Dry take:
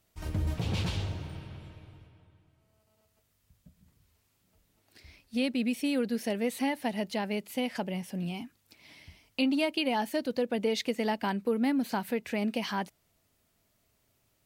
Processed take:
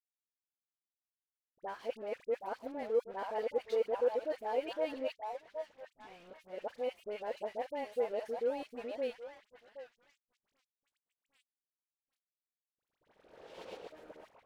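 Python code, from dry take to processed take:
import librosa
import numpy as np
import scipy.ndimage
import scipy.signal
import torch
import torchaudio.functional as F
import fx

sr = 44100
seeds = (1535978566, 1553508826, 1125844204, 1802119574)

p1 = x[::-1].copy()
p2 = fx.ladder_highpass(p1, sr, hz=430.0, resonance_pct=55)
p3 = fx.tilt_eq(p2, sr, slope=-2.0)
p4 = p3 + fx.echo_stepped(p3, sr, ms=769, hz=890.0, octaves=0.7, feedback_pct=70, wet_db=-2, dry=0)
p5 = np.sign(p4) * np.maximum(np.abs(p4) - 10.0 ** (-53.0 / 20.0), 0.0)
p6 = fx.high_shelf(p5, sr, hz=4300.0, db=-5.5)
y = fx.dispersion(p6, sr, late='highs', ms=55.0, hz=1300.0)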